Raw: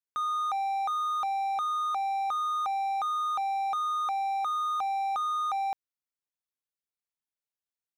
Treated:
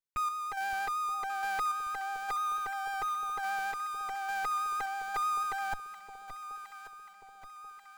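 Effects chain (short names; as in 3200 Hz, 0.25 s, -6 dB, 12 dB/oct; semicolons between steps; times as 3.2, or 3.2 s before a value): minimum comb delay 7.2 ms; 2.36–3.4 LPF 1900 Hz 12 dB/oct; in parallel at -5.5 dB: Schmitt trigger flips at -42 dBFS; on the sum: random-step tremolo; on a send: echo with dull and thin repeats by turns 0.568 s, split 850 Hz, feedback 73%, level -9 dB; on the sum: vibrato 6.3 Hz 19 cents; gain -2 dB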